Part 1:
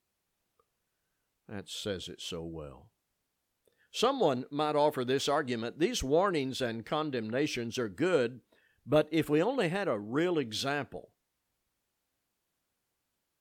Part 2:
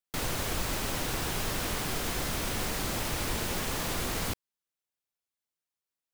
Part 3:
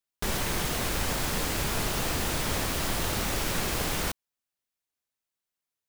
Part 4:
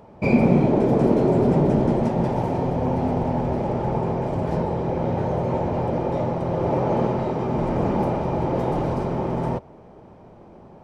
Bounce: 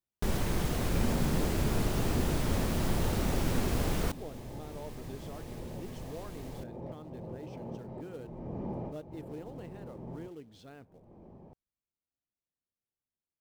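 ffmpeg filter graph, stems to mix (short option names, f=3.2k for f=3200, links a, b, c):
-filter_complex "[0:a]acrusher=bits=3:mode=log:mix=0:aa=0.000001,volume=-19.5dB,asplit=2[a][b];[1:a]dynaudnorm=f=910:g=7:m=11.5dB,adelay=2300,volume=-18dB[c];[2:a]volume=-3.5dB[d];[3:a]adelay=700,volume=-10.5dB[e];[b]apad=whole_len=508551[f];[e][f]sidechaincompress=threshold=-59dB:ratio=16:attack=6.2:release=367[g];[c][g]amix=inputs=2:normalize=0,bandreject=f=1.4k:w=7.2,acompressor=threshold=-44dB:ratio=2,volume=0dB[h];[a][d][h]amix=inputs=3:normalize=0,tiltshelf=f=680:g=6"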